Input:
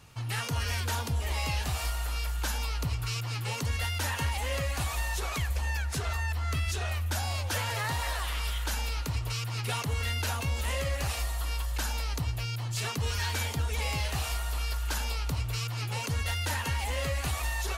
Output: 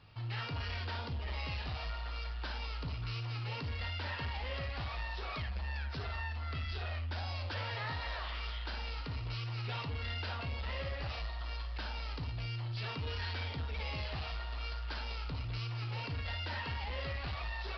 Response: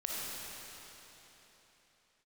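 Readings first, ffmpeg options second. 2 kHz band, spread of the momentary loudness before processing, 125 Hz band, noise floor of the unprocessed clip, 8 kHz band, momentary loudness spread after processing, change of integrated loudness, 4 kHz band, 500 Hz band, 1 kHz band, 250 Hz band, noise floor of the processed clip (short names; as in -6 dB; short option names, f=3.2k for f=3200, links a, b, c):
-7.0 dB, 2 LU, -7.0 dB, -35 dBFS, under -30 dB, 3 LU, -8.0 dB, -7.0 dB, -7.0 dB, -7.0 dB, -7.0 dB, -41 dBFS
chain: -filter_complex "[1:a]atrim=start_sample=2205,atrim=end_sample=3087[a];[0:a][a]afir=irnorm=-1:irlink=0,flanger=delay=9.5:depth=1.7:regen=81:speed=0.18:shape=triangular,aresample=11025,asoftclip=type=tanh:threshold=-34dB,aresample=44100,volume=1dB"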